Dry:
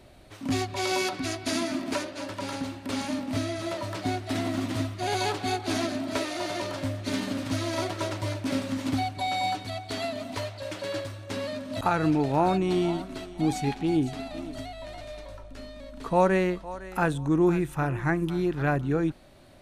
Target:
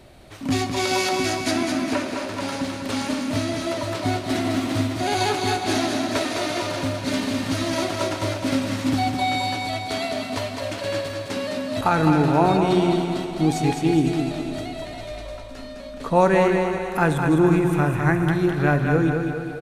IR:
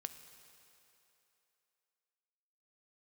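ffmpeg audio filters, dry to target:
-filter_complex "[0:a]asettb=1/sr,asplit=3[link_01][link_02][link_03];[link_01]atrim=end=1.514[link_04];[link_02]atrim=start=1.51:end=2.33,asetpts=PTS-STARTPTS,afade=type=in:duration=0.004:curve=qsin,afade=type=out:start_time=0.816:duration=0.004:curve=qsin,acrossover=split=3000[link_05][link_06];[link_06]acompressor=threshold=-43dB:ratio=4:attack=1:release=60[link_07];[link_05][link_07]amix=inputs=2:normalize=0[link_08];[link_03]atrim=start=2.326[link_09];[link_04][link_08]acrossfade=duration=0.004:curve1=hsin:curve2=qsin[link_10];[link_10][link_09]acrossfade=duration=0.004:curve1=qsin:curve2=hsin,aecho=1:1:208|416|624|832|1040|1248:0.531|0.255|0.122|0.0587|0.0282|0.0135[link_11];[1:a]atrim=start_sample=2205[link_12];[link_11][link_12]afir=irnorm=-1:irlink=0,volume=8.5dB"

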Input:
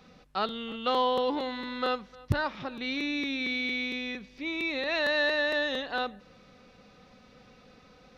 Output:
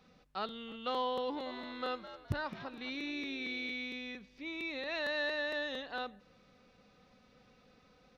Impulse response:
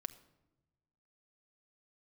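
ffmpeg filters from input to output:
-filter_complex "[0:a]asplit=3[link_01][link_02][link_03];[link_01]afade=type=out:start_time=1.45:duration=0.02[link_04];[link_02]asplit=4[link_05][link_06][link_07][link_08];[link_06]adelay=210,afreqshift=87,volume=-12.5dB[link_09];[link_07]adelay=420,afreqshift=174,volume=-22.4dB[link_10];[link_08]adelay=630,afreqshift=261,volume=-32.3dB[link_11];[link_05][link_09][link_10][link_11]amix=inputs=4:normalize=0,afade=type=in:start_time=1.45:duration=0.02,afade=type=out:start_time=3.71:duration=0.02[link_12];[link_03]afade=type=in:start_time=3.71:duration=0.02[link_13];[link_04][link_12][link_13]amix=inputs=3:normalize=0,volume=-8.5dB"

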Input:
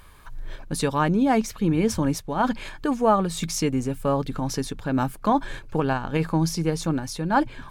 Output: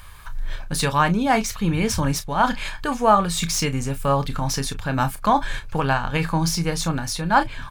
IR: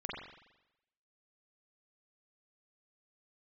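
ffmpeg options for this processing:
-filter_complex "[0:a]acrossover=split=5000[link_01][link_02];[link_01]equalizer=frequency=330:width=0.8:gain=-12.5[link_03];[link_02]asoftclip=type=hard:threshold=-32.5dB[link_04];[link_03][link_04]amix=inputs=2:normalize=0,aecho=1:1:29|41:0.282|0.126,volume=7.5dB"

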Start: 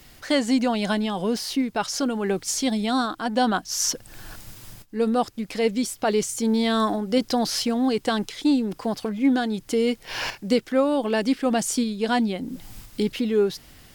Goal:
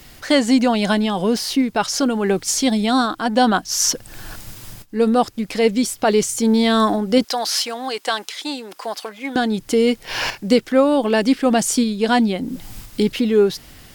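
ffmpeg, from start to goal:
ffmpeg -i in.wav -filter_complex "[0:a]asettb=1/sr,asplit=3[link_01][link_02][link_03];[link_01]atrim=end=7.244[link_04];[link_02]atrim=start=7.24:end=9.36,asetpts=PTS-STARTPTS,afade=type=in:duration=0.004:curve=qsin,afade=type=out:start_time=2.116:duration=0.004:curve=qsin,highpass=700[link_05];[link_03]atrim=start=9.356[link_06];[link_04][link_05]acrossfade=duration=0.004:curve1=hsin:curve2=qsin[link_07];[link_07][link_06]acrossfade=duration=0.004:curve1=qsin:curve2=hsin,volume=6dB" out.wav

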